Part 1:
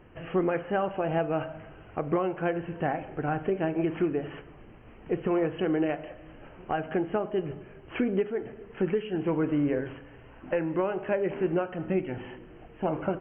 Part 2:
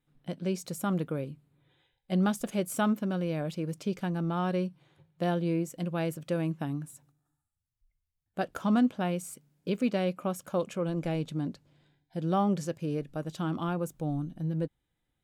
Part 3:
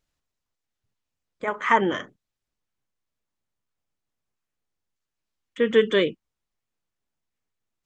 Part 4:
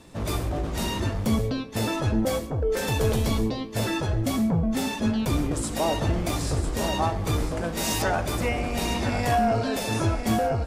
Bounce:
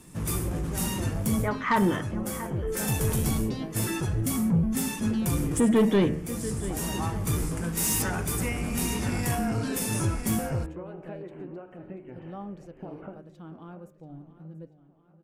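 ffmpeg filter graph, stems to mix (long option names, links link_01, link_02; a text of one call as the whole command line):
ffmpeg -i stem1.wav -i stem2.wav -i stem3.wav -i stem4.wav -filter_complex "[0:a]acompressor=threshold=-30dB:ratio=6,volume=-7dB,asplit=2[link_01][link_02];[link_02]volume=-14.5dB[link_03];[1:a]volume=-12dB,asplit=2[link_04][link_05];[link_05]volume=-16dB[link_06];[2:a]asubboost=boost=8:cutoff=200,volume=1dB,asplit=3[link_07][link_08][link_09];[link_08]volume=-17.5dB[link_10];[3:a]equalizer=frequency=160:width_type=o:width=0.67:gain=8,equalizer=frequency=630:width_type=o:width=0.67:gain=-11,equalizer=frequency=4000:width_type=o:width=0.67:gain=-7,equalizer=frequency=10000:width_type=o:width=0.67:gain=5,crystalizer=i=5:c=0,volume=-3dB[link_11];[link_09]apad=whole_len=470160[link_12];[link_11][link_12]sidechaincompress=threshold=-27dB:ratio=3:attack=16:release=957[link_13];[link_03][link_06][link_10]amix=inputs=3:normalize=0,aecho=0:1:686|1372|2058|2744|3430|4116|4802:1|0.47|0.221|0.104|0.0488|0.0229|0.0108[link_14];[link_01][link_04][link_07][link_13][link_14]amix=inputs=5:normalize=0,highshelf=frequency=2300:gain=-10.5,bandreject=frequency=75.28:width_type=h:width=4,bandreject=frequency=150.56:width_type=h:width=4,bandreject=frequency=225.84:width_type=h:width=4,bandreject=frequency=301.12:width_type=h:width=4,bandreject=frequency=376.4:width_type=h:width=4,bandreject=frequency=451.68:width_type=h:width=4,bandreject=frequency=526.96:width_type=h:width=4,bandreject=frequency=602.24:width_type=h:width=4,bandreject=frequency=677.52:width_type=h:width=4,bandreject=frequency=752.8:width_type=h:width=4,bandreject=frequency=828.08:width_type=h:width=4,bandreject=frequency=903.36:width_type=h:width=4,bandreject=frequency=978.64:width_type=h:width=4,bandreject=frequency=1053.92:width_type=h:width=4,bandreject=frequency=1129.2:width_type=h:width=4,bandreject=frequency=1204.48:width_type=h:width=4,bandreject=frequency=1279.76:width_type=h:width=4,bandreject=frequency=1355.04:width_type=h:width=4,bandreject=frequency=1430.32:width_type=h:width=4,bandreject=frequency=1505.6:width_type=h:width=4,bandreject=frequency=1580.88:width_type=h:width=4,bandreject=frequency=1656.16:width_type=h:width=4,bandreject=frequency=1731.44:width_type=h:width=4,bandreject=frequency=1806.72:width_type=h:width=4,bandreject=frequency=1882:width_type=h:width=4,bandreject=frequency=1957.28:width_type=h:width=4,bandreject=frequency=2032.56:width_type=h:width=4,bandreject=frequency=2107.84:width_type=h:width=4,bandreject=frequency=2183.12:width_type=h:width=4,bandreject=frequency=2258.4:width_type=h:width=4,bandreject=frequency=2333.68:width_type=h:width=4,bandreject=frequency=2408.96:width_type=h:width=4,bandreject=frequency=2484.24:width_type=h:width=4,bandreject=frequency=2559.52:width_type=h:width=4,bandreject=frequency=2634.8:width_type=h:width=4,bandreject=frequency=2710.08:width_type=h:width=4,bandreject=frequency=2785.36:width_type=h:width=4,bandreject=frequency=2860.64:width_type=h:width=4,asoftclip=type=tanh:threshold=-15.5dB" out.wav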